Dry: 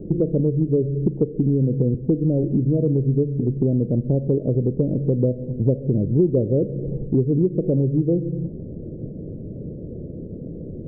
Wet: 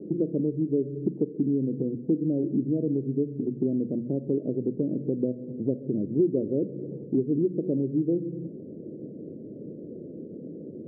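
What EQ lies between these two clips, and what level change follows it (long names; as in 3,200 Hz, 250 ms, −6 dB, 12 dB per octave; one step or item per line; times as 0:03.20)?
mains-hum notches 60/120/180/240 Hz
dynamic equaliser 500 Hz, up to −5 dB, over −36 dBFS, Q 2.6
four-pole ladder band-pass 360 Hz, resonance 20%
+7.5 dB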